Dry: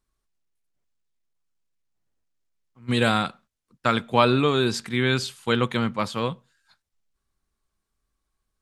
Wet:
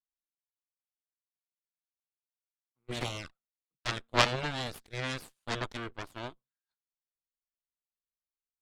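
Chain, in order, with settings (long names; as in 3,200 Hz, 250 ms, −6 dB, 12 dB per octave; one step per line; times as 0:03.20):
harmonic generator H 3 −11 dB, 4 −15 dB, 7 −32 dB, 8 −42 dB, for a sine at −3 dBFS
0:03.00–0:03.88: flanger swept by the level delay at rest 7.2 ms, full sweep at −30 dBFS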